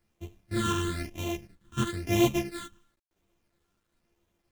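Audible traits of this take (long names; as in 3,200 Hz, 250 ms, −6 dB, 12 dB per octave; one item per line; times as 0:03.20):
a buzz of ramps at a fixed pitch in blocks of 128 samples
phaser sweep stages 8, 1 Hz, lowest notch 640–1,500 Hz
a quantiser's noise floor 12 bits, dither none
a shimmering, thickened sound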